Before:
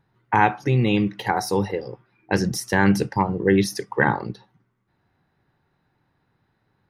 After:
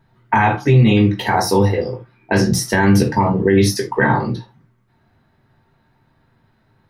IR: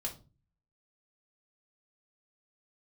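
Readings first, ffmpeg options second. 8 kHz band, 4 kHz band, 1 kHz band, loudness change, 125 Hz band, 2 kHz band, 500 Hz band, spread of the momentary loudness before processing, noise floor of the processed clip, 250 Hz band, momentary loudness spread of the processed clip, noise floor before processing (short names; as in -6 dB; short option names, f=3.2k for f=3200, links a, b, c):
+8.0 dB, +7.0 dB, +4.5 dB, +6.0 dB, +9.0 dB, +4.0 dB, +6.0 dB, 9 LU, -61 dBFS, +6.0 dB, 9 LU, -71 dBFS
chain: -filter_complex "[1:a]atrim=start_sample=2205,atrim=end_sample=4410[a];[0:a][a]afir=irnorm=-1:irlink=0,alimiter=level_in=11.5dB:limit=-1dB:release=50:level=0:latency=1,volume=-3.5dB"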